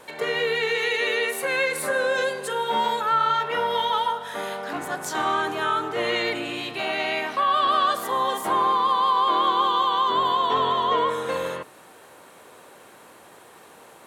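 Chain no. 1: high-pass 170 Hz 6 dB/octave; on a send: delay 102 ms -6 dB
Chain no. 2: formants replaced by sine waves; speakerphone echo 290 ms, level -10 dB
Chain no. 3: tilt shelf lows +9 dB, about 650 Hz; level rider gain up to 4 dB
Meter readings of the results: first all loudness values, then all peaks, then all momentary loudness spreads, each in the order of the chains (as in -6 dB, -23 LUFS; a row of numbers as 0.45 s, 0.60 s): -22.5 LUFS, -22.5 LUFS, -21.5 LUFS; -9.5 dBFS, -7.5 dBFS, -8.0 dBFS; 9 LU, 15 LU, 6 LU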